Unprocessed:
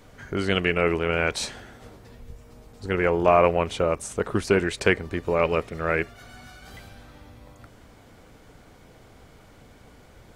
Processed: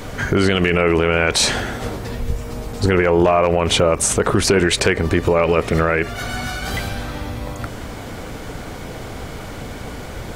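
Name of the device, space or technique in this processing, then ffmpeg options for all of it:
loud club master: -af "acompressor=threshold=-27dB:ratio=2,asoftclip=type=hard:threshold=-15dB,alimiter=level_in=25dB:limit=-1dB:release=50:level=0:latency=1,volume=-5dB"

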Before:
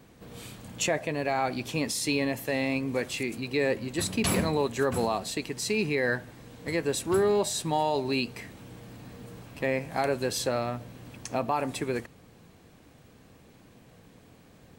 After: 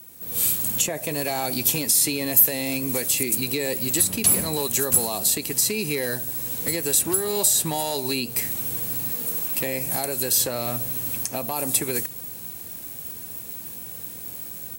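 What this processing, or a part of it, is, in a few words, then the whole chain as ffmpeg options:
FM broadcast chain: -filter_complex "[0:a]highpass=47,dynaudnorm=framelen=220:gausssize=3:maxgain=10dB,acrossover=split=860|3100[link_01][link_02][link_03];[link_01]acompressor=threshold=-21dB:ratio=4[link_04];[link_02]acompressor=threshold=-35dB:ratio=4[link_05];[link_03]acompressor=threshold=-34dB:ratio=4[link_06];[link_04][link_05][link_06]amix=inputs=3:normalize=0,aemphasis=mode=production:type=50fm,alimiter=limit=-13.5dB:level=0:latency=1:release=307,asoftclip=type=hard:threshold=-17dB,lowpass=frequency=15000:width=0.5412,lowpass=frequency=15000:width=1.3066,aemphasis=mode=production:type=50fm,asettb=1/sr,asplit=3[link_07][link_08][link_09];[link_07]atrim=end=9.124[link_10];[link_08]atrim=start=9.12:end=9.58,asetpts=PTS-STARTPTS,afade=type=in:duration=0.004:curve=qsin,afade=type=out:start_time=0.456:duration=0.004:curve=qsin,highpass=190[link_11];[link_09]atrim=start=9.576[link_12];[link_10][link_11]acrossfade=duration=0.004:curve1=hsin:curve2=qsin[link_13];[link_13][link_12]acrossfade=duration=0.004:curve1=qsin:curve2=hsin,volume=-2.5dB"

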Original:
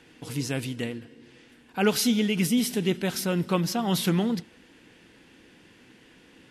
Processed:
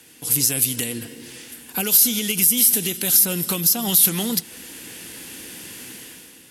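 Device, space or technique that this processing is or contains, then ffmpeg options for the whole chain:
FM broadcast chain: -filter_complex "[0:a]highpass=43,dynaudnorm=framelen=100:gausssize=11:maxgain=12dB,acrossover=split=530|2800[link_01][link_02][link_03];[link_01]acompressor=threshold=-23dB:ratio=4[link_04];[link_02]acompressor=threshold=-32dB:ratio=4[link_05];[link_03]acompressor=threshold=-26dB:ratio=4[link_06];[link_04][link_05][link_06]amix=inputs=3:normalize=0,aemphasis=mode=production:type=50fm,alimiter=limit=-14.5dB:level=0:latency=1:release=180,asoftclip=type=hard:threshold=-17.5dB,lowpass=frequency=15000:width=0.5412,lowpass=frequency=15000:width=1.3066,aemphasis=mode=production:type=50fm"

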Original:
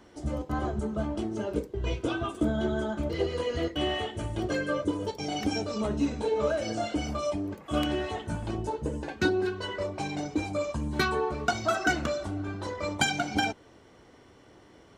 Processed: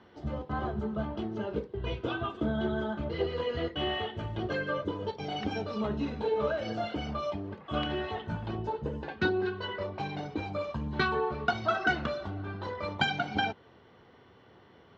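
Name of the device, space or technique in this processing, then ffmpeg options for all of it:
guitar cabinet: -af "highpass=81,equalizer=frequency=300:width_type=q:width=4:gain=-8,equalizer=frequency=600:width_type=q:width=4:gain=-4,equalizer=frequency=2300:width_type=q:width=4:gain=-4,lowpass=frequency=3900:width=0.5412,lowpass=frequency=3900:width=1.3066"

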